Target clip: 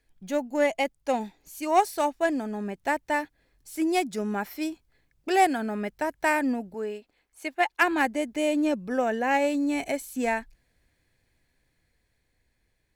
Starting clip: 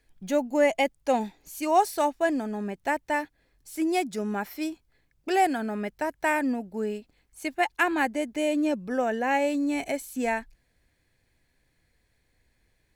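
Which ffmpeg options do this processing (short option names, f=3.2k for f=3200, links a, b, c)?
-filter_complex "[0:a]aeval=exprs='0.316*(cos(1*acos(clip(val(0)/0.316,-1,1)))-cos(1*PI/2))+0.0355*(cos(3*acos(clip(val(0)/0.316,-1,1)))-cos(3*PI/2))':c=same,asettb=1/sr,asplit=3[a][b][c];[a]atrim=end=6.744[d];[b]atrim=start=6.74:end=7.82,asetpts=PTS-STARTPTS,afade=t=in:d=0.004:c=qsin,afade=t=out:st=1.076:d=0.004:c=qsin,bass=f=250:g=-13,treble=f=4k:g=-5[e];[c]atrim=start=7.816[f];[d][e]acrossfade=d=0.004:c1=hsin:c2=qsin[g];[g][f]acrossfade=d=0.004:c1=qsin:c2=hsin,dynaudnorm=f=460:g=9:m=4dB"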